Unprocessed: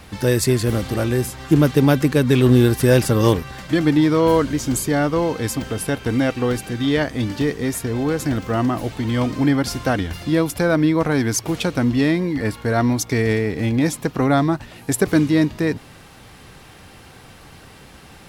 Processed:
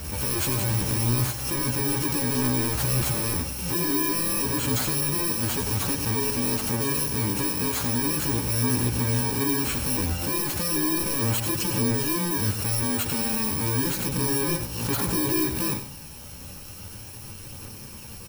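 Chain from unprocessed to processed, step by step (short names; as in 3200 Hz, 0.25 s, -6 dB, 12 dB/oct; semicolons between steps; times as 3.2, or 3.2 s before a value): FFT order left unsorted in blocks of 64 samples; in parallel at 0 dB: negative-ratio compressor -21 dBFS; on the sum: soft clip -17.5 dBFS, distortion -8 dB; chorus voices 2, 0.17 Hz, delay 13 ms, depth 4.2 ms; on a send: echo 95 ms -10.5 dB; on the sum: backwards sustainer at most 48 dB/s; gain -2 dB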